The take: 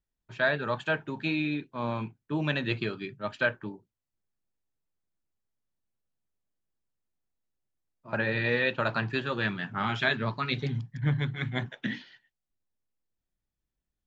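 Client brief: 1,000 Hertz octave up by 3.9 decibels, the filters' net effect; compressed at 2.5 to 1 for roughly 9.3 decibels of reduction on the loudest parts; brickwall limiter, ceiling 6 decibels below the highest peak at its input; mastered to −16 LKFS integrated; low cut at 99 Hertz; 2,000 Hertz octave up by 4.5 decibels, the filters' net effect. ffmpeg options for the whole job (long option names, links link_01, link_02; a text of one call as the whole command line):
ffmpeg -i in.wav -af "highpass=99,equalizer=frequency=1000:width_type=o:gain=3.5,equalizer=frequency=2000:width_type=o:gain=4.5,acompressor=threshold=-32dB:ratio=2.5,volume=19dB,alimiter=limit=-3.5dB:level=0:latency=1" out.wav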